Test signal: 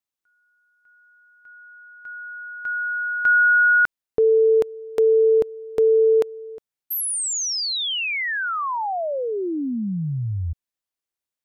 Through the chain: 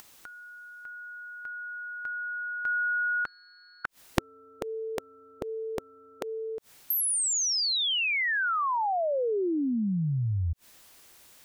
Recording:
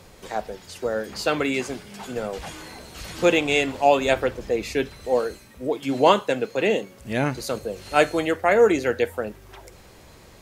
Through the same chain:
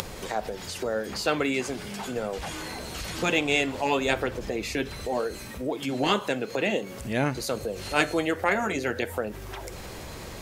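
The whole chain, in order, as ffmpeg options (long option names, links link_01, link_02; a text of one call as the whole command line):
ffmpeg -i in.wav -af "acompressor=mode=upward:threshold=-30dB:ratio=2.5:attack=34:release=54:knee=2.83:detection=peak,aeval=exprs='0.794*(cos(1*acos(clip(val(0)/0.794,-1,1)))-cos(1*PI/2))+0.0631*(cos(3*acos(clip(val(0)/0.794,-1,1)))-cos(3*PI/2))':channel_layout=same,afftfilt=real='re*lt(hypot(re,im),0.708)':imag='im*lt(hypot(re,im),0.708)':win_size=1024:overlap=0.75" out.wav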